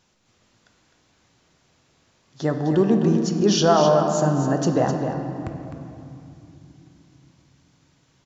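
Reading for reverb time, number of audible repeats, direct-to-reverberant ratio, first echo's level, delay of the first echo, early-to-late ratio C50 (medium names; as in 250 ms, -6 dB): 2.8 s, 1, 3.0 dB, -8.5 dB, 257 ms, 4.0 dB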